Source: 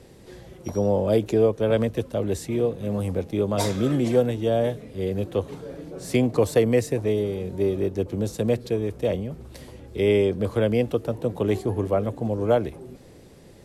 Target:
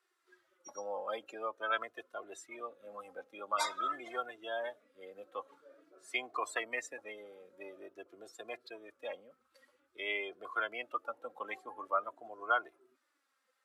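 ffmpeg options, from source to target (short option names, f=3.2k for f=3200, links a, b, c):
-af "flanger=delay=2.8:depth=1:regen=30:speed=0.48:shape=sinusoidal,afftdn=nr=20:nf=-37,highpass=f=1.3k:t=q:w=5.4,volume=-1dB"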